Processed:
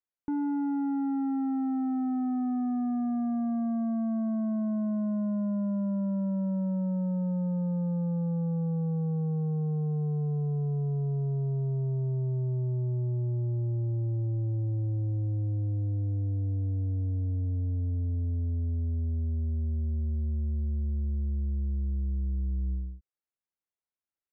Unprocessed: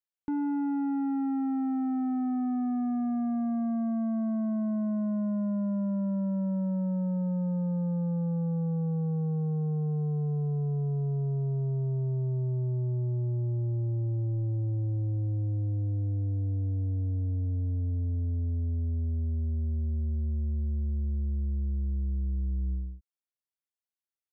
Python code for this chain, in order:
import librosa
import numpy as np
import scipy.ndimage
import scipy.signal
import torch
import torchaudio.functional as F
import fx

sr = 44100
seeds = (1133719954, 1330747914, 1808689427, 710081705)

y = scipy.signal.sosfilt(scipy.signal.butter(2, 1900.0, 'lowpass', fs=sr, output='sos'), x)